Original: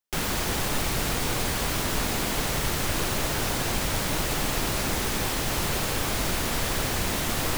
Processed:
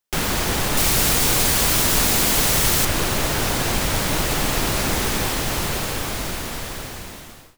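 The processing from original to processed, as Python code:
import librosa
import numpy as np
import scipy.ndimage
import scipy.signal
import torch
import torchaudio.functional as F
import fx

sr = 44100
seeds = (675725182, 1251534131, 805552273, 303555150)

y = fx.fade_out_tail(x, sr, length_s=2.51)
y = fx.high_shelf(y, sr, hz=4100.0, db=8.5, at=(0.77, 2.85))
y = y * 10.0 ** (5.5 / 20.0)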